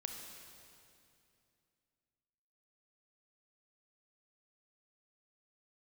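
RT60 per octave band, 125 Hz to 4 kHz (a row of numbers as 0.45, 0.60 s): 3.1, 3.0, 2.7, 2.5, 2.4, 2.3 s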